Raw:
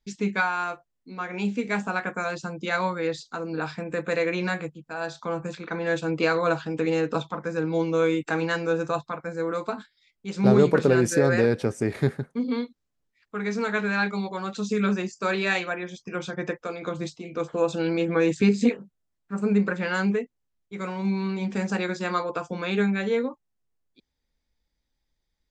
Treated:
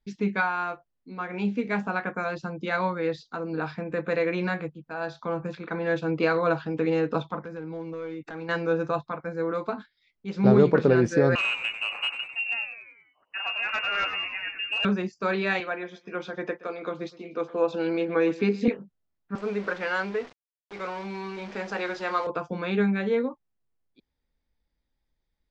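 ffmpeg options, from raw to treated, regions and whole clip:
-filter_complex "[0:a]asettb=1/sr,asplit=3[a][b][c];[a]atrim=end=7.404[d];[b]atrim=start=7.4:end=8.49,asetpts=PTS-STARTPTS,afade=t=in:d=0.004:c=qsin,afade=t=out:st=1.086:d=0.004:c=qsin,bandreject=f=3.1k:w=5.5,acompressor=threshold=-37dB:ratio=2.5:attack=3.2:release=140:knee=1:detection=peak,asoftclip=type=hard:threshold=-29.5dB[e];[c]atrim=start=8.486[f];[d][e]acrossfade=d=0.004:c1=hsin:c2=qsin[g];[g][f]acrossfade=d=0.004:c1=qsin:c2=hsin,asettb=1/sr,asplit=3[h][i][j];[h]atrim=end=11.354[k];[i]atrim=start=11.35:end=14.85,asetpts=PTS-STARTPTS,afade=t=in:d=0.004:c=qsin,afade=t=out:st=3.496:d=0.004:c=qsin,lowpass=f=2.6k:t=q:w=0.5098,lowpass=f=2.6k:t=q:w=0.6013,lowpass=f=2.6k:t=q:w=0.9,lowpass=f=2.6k:t=q:w=2.563,afreqshift=-3000,asoftclip=type=hard:threshold=-20dB,asplit=6[l][m][n][o][p][q];[m]adelay=96,afreqshift=-110,volume=-10dB[r];[n]adelay=192,afreqshift=-220,volume=-16dB[s];[o]adelay=288,afreqshift=-330,volume=-22dB[t];[p]adelay=384,afreqshift=-440,volume=-28.1dB[u];[q]adelay=480,afreqshift=-550,volume=-34.1dB[v];[l][r][s][t][u][v]amix=inputs=6:normalize=0,atrim=end_sample=154350[w];[j]atrim=start=14.846[x];[k][w]acrossfade=d=0.004:c1=hsin:c2=qsin[y];[y][x]acrossfade=d=0.004:c1=qsin:c2=hsin,asettb=1/sr,asplit=3[z][aa][ab];[z]atrim=end=15.604[ac];[aa]atrim=start=15.6:end=18.68,asetpts=PTS-STARTPTS,afade=t=in:d=0.004:c=qsin,afade=t=out:st=3.076:d=0.004:c=qsin,highpass=270,lowpass=7.6k,aecho=1:1:121|242|363:0.106|0.035|0.0115,atrim=end_sample=135828[ad];[ab]atrim=start=18.676[ae];[ac][ad]acrossfade=d=0.004:c1=hsin:c2=qsin[af];[af][ae]acrossfade=d=0.004:c1=qsin:c2=hsin,asettb=1/sr,asplit=3[ag][ah][ai];[ag]atrim=end=19.354[aj];[ah]atrim=start=19.35:end=22.27,asetpts=PTS-STARTPTS,afade=t=in:d=0.004:c=qsin,afade=t=out:st=2.916:d=0.004:c=qsin,aeval=exprs='val(0)+0.5*0.02*sgn(val(0))':c=same,highpass=430,acrusher=bits=8:dc=4:mix=0:aa=0.000001[ak];[ai]atrim=start=22.266[al];[aj][ak]acrossfade=d=0.004:c1=hsin:c2=qsin[am];[am][al]acrossfade=d=0.004:c1=qsin:c2=hsin,lowpass=f=5.8k:w=0.5412,lowpass=f=5.8k:w=1.3066,highshelf=f=3.4k:g=-9"

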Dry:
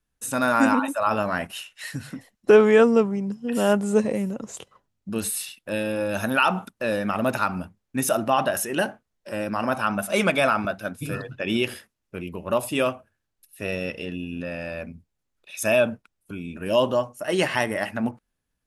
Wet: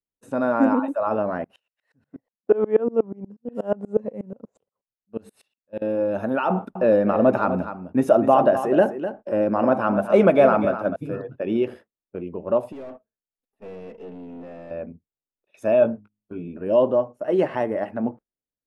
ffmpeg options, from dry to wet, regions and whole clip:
-filter_complex "[0:a]asettb=1/sr,asplit=3[a][b][c];[a]atrim=end=1.444[d];[b]atrim=start=1.44:end=5.82,asetpts=PTS-STARTPTS,afade=t=in:d=0.004:c=qsin,afade=t=out:st=4.376:d=0.004:c=qsin,equalizer=f=340:t=o:w=0.32:g=-7,aeval=exprs='val(0)*pow(10,-28*if(lt(mod(-8.3*n/s,1),2*abs(-8.3)/1000),1-mod(-8.3*n/s,1)/(2*abs(-8.3)/1000),(mod(-8.3*n/s,1)-2*abs(-8.3)/1000)/(1-2*abs(-8.3)/1000))/20)':c=same[e];[c]atrim=start=5.816[f];[d][e]acrossfade=d=0.004:c1=hsin:c2=qsin[g];[g][f]acrossfade=d=0.004:c1=qsin:c2=hsin,asettb=1/sr,asplit=3[h][i][j];[h]atrim=end=6.504[k];[i]atrim=start=6.5:end=10.96,asetpts=PTS-STARTPTS,afade=t=in:d=0.004:c=qsin,afade=t=out:st=4.456:d=0.004:c=qsin,acontrast=30,aecho=1:1:252:0.299,atrim=end_sample=196686[l];[j]atrim=start=10.956[m];[k][l]acrossfade=d=0.004:c1=hsin:c2=qsin[n];[n][m]acrossfade=d=0.004:c1=qsin:c2=hsin,asettb=1/sr,asplit=3[o][p][q];[o]atrim=end=12.724[r];[p]atrim=start=12.72:end=14.71,asetpts=PTS-STARTPTS,afade=t=in:d=0.004:c=qsin,afade=t=out:st=1.986:d=0.004:c=qsin,aecho=1:1:4.5:0.49,atrim=end_sample=87759,aeval=exprs='(tanh(70.8*val(0)+0.7)-tanh(0.7))/70.8':c=same[s];[q]atrim=start=14.706[t];[r][s]acrossfade=d=0.004:c1=hsin:c2=qsin[u];[u][t]acrossfade=d=0.004:c1=qsin:c2=hsin,asettb=1/sr,asplit=3[v][w][x];[v]atrim=end=15.804[y];[w]atrim=start=15.8:end=16.48,asetpts=PTS-STARTPTS,afade=t=in:d=0.004:c=qsin,afade=t=out:st=0.676:d=0.004:c=qsin,asplit=2[z][aa];[aa]adelay=18,volume=-4.5dB[ab];[z][ab]amix=inputs=2:normalize=0,atrim=end_sample=29988,bandreject=f=52.08:t=h:w=4,bandreject=f=104.16:t=h:w=4,bandreject=f=156.24:t=h:w=4,bandreject=f=208.32:t=h:w=4,bandreject=f=260.4:t=h:w=4,bandreject=f=312.48:t=h:w=4[ac];[x]atrim=start=16.476[ad];[y][ac]acrossfade=d=0.004:c1=hsin:c2=qsin[ae];[ae][ad]acrossfade=d=0.004:c1=qsin:c2=hsin,agate=range=-16dB:threshold=-40dB:ratio=16:detection=peak,lowpass=f=1k:p=1,equalizer=f=460:w=0.49:g=13,volume=-7.5dB"

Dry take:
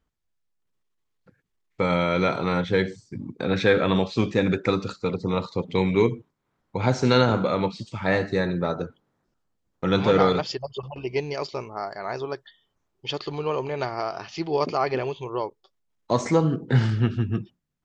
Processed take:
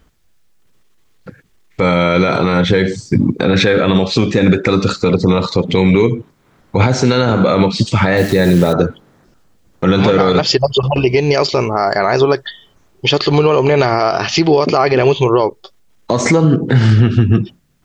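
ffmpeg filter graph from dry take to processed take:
-filter_complex "[0:a]asettb=1/sr,asplit=3[a][b][c];[a]atrim=end=8.174[d];[b]atrim=start=8.17:end=8.73,asetpts=PTS-STARTPTS,afade=t=in:d=0.004:c=qsin,afade=t=out:st=0.556:d=0.004:c=qsin,equalizer=f=1.2k:w=2.1:g=-8,acrusher=bits=8:dc=4:mix=0:aa=0.000001[e];[c]atrim=start=8.726[f];[d][e]acrossfade=d=0.004:c1=hsin:c2=qsin[g];[g][f]acrossfade=d=0.004:c1=qsin:c2=hsin,equalizer=f=950:t=o:w=0.68:g=-3,acompressor=threshold=-28dB:ratio=6,alimiter=level_in=24dB:limit=-1dB:release=50:level=0:latency=1,volume=-1dB"

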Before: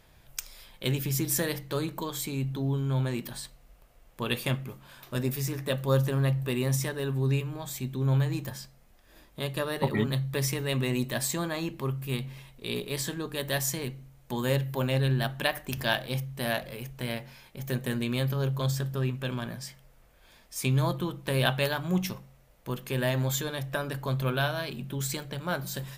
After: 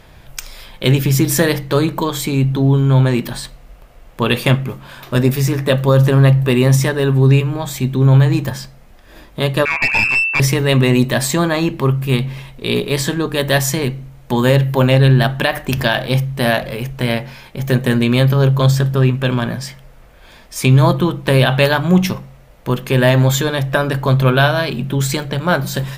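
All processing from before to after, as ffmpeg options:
-filter_complex "[0:a]asettb=1/sr,asplit=3[a][b][c];[a]atrim=end=9.654[d];[b]atrim=start=9.65:end=10.4,asetpts=PTS-STARTPTS,afade=t=in:d=0.004:c=qsin,afade=t=out:st=0.746:d=0.004:c=qsin,lowpass=f=2.4k:t=q:w=0.5098,lowpass=f=2.4k:t=q:w=0.6013,lowpass=f=2.4k:t=q:w=0.9,lowpass=f=2.4k:t=q:w=2.563,afreqshift=-2800,aeval=exprs='clip(val(0),-1,0.0376)':c=same[e];[c]atrim=start=10.396[f];[d][e]acrossfade=d=0.004:c1=hsin:c2=qsin[g];[g][f]acrossfade=d=0.004:c1=qsin:c2=hsin,highshelf=f=5.5k:g=-9,alimiter=level_in=17dB:limit=-1dB:release=50:level=0:latency=1,volume=-1dB"

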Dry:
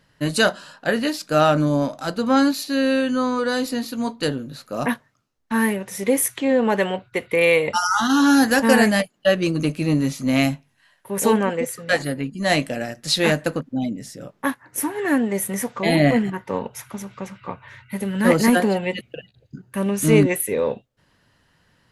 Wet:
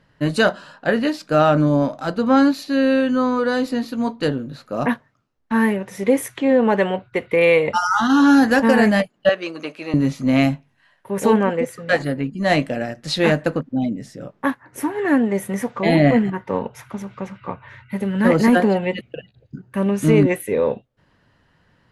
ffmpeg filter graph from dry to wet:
-filter_complex "[0:a]asettb=1/sr,asplit=3[a][b][c];[a]atrim=end=9.294[d];[b]atrim=start=9.29:end=9.94,asetpts=PTS-STARTPTS,afade=t=in:d=0.004:c=qsin,afade=t=out:st=0.646:d=0.004:c=qsin,highpass=620,acrossover=split=5800[e][f];[f]acompressor=threshold=-51dB:ratio=4:attack=1:release=60[g];[e][g]amix=inputs=2:normalize=0[h];[c]atrim=start=9.936[i];[d][h]acrossfade=d=0.004:c1=hsin:c2=qsin[j];[j][i]acrossfade=d=0.004:c1=qsin:c2=hsin,lowpass=f=2.1k:p=1,alimiter=level_in=6.5dB:limit=-1dB:release=50:level=0:latency=1,volume=-3.5dB"

